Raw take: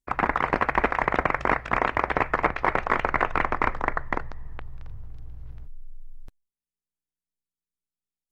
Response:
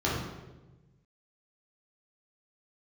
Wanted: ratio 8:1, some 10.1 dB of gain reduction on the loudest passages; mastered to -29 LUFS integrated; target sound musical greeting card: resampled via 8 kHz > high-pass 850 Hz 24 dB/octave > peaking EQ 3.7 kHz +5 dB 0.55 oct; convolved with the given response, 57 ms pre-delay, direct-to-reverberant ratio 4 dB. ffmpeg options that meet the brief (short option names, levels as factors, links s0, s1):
-filter_complex "[0:a]acompressor=threshold=0.0398:ratio=8,asplit=2[s0][s1];[1:a]atrim=start_sample=2205,adelay=57[s2];[s1][s2]afir=irnorm=-1:irlink=0,volume=0.168[s3];[s0][s3]amix=inputs=2:normalize=0,aresample=8000,aresample=44100,highpass=f=850:w=0.5412,highpass=f=850:w=1.3066,equalizer=f=3700:t=o:w=0.55:g=5,volume=2"